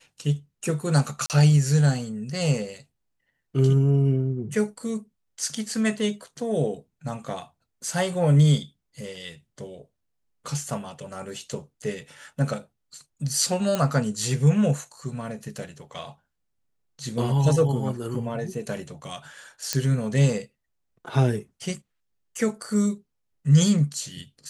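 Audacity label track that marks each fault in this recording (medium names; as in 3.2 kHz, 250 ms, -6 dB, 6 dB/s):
1.260000	1.300000	dropout 38 ms
13.750000	13.750000	pop -11 dBFS
19.730000	19.730000	pop -7 dBFS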